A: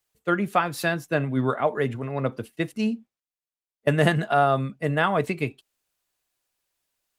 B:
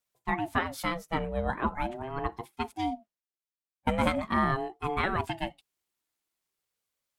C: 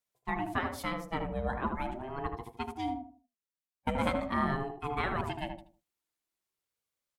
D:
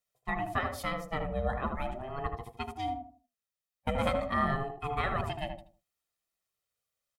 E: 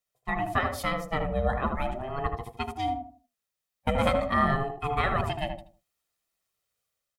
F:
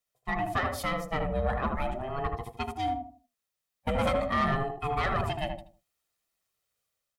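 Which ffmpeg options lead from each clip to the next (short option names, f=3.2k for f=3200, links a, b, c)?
-af "aeval=exprs='val(0)*sin(2*PI*450*n/s+450*0.3/0.41*sin(2*PI*0.41*n/s))':c=same,volume=-3.5dB"
-filter_complex "[0:a]asplit=2[a][b];[b]adelay=78,lowpass=f=1k:p=1,volume=-3dB,asplit=2[c][d];[d]adelay=78,lowpass=f=1k:p=1,volume=0.33,asplit=2[e][f];[f]adelay=78,lowpass=f=1k:p=1,volume=0.33,asplit=2[g][h];[h]adelay=78,lowpass=f=1k:p=1,volume=0.33[i];[a][c][e][g][i]amix=inputs=5:normalize=0,volume=-4.5dB"
-af "aecho=1:1:1.6:0.51"
-af "dynaudnorm=f=120:g=5:m=5dB"
-af "asoftclip=type=tanh:threshold=-19.5dB"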